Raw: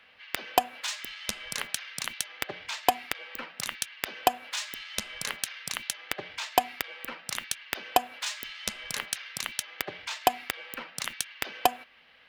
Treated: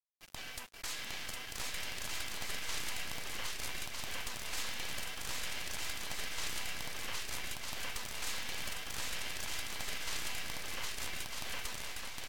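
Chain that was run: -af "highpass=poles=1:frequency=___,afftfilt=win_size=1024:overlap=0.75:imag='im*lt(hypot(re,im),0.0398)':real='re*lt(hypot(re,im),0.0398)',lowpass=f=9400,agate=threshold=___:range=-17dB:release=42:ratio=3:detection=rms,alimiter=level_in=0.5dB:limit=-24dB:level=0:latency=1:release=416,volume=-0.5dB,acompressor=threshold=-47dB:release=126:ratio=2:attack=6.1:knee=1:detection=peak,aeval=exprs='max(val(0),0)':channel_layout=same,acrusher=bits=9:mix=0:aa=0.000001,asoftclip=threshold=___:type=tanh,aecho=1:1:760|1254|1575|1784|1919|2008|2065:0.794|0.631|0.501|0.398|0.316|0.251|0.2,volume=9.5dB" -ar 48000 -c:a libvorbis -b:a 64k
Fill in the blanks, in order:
1200, -44dB, -33dB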